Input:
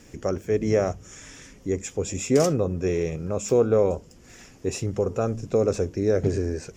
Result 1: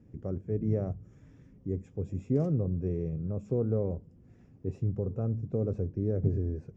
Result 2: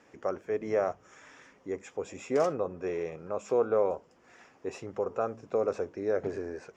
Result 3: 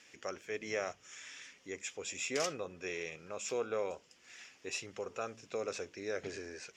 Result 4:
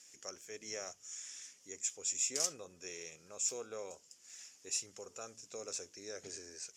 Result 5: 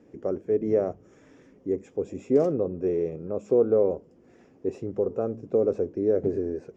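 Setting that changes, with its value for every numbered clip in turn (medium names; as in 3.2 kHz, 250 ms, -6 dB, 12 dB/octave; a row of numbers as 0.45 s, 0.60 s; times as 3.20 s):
band-pass filter, frequency: 120 Hz, 1 kHz, 2.8 kHz, 7.2 kHz, 380 Hz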